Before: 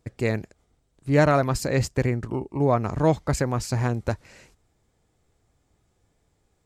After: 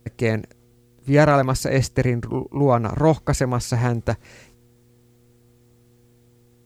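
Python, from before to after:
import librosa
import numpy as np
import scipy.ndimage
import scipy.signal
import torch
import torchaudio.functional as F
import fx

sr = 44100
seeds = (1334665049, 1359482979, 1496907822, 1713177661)

y = fx.quant_dither(x, sr, seeds[0], bits=12, dither='triangular')
y = fx.dmg_buzz(y, sr, base_hz=120.0, harmonics=4, level_db=-60.0, tilt_db=-4, odd_only=False)
y = F.gain(torch.from_numpy(y), 3.5).numpy()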